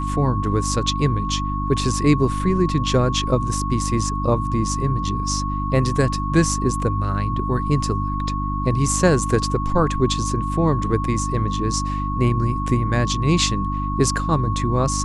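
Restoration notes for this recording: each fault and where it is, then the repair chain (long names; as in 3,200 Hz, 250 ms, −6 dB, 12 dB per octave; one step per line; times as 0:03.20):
mains hum 50 Hz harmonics 6 −25 dBFS
whistle 1,100 Hz −26 dBFS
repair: notch filter 1,100 Hz, Q 30
hum removal 50 Hz, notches 6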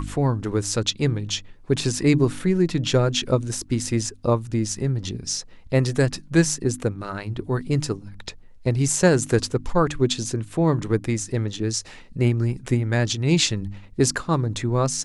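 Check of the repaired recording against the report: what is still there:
none of them is left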